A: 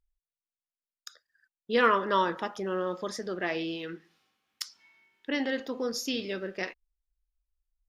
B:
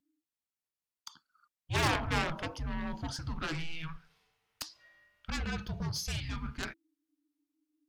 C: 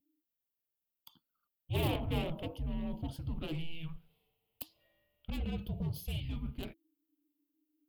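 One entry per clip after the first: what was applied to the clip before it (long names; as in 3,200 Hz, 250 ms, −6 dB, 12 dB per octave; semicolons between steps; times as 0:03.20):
harmonic generator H 7 −11 dB, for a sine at −9.5 dBFS; frequency shifter −330 Hz; soft clipping −23 dBFS, distortion −9 dB
drawn EQ curve 590 Hz 0 dB, 1,600 Hz −22 dB, 3,000 Hz −2 dB, 5,900 Hz −24 dB, 14,000 Hz +8 dB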